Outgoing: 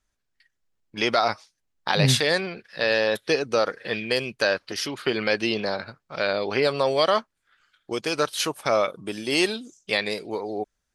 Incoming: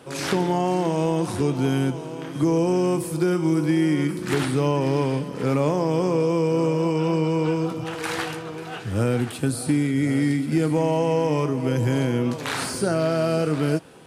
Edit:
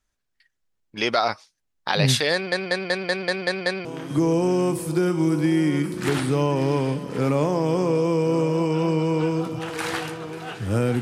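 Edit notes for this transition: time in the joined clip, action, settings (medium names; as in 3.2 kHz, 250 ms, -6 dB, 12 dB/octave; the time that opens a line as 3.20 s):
outgoing
2.33 s: stutter in place 0.19 s, 8 plays
3.85 s: go over to incoming from 2.10 s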